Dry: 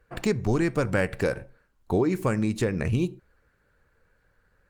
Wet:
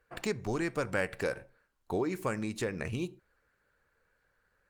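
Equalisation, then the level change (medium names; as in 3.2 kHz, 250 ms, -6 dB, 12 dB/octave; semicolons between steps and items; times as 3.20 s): bass shelf 320 Hz -9.5 dB; -4.0 dB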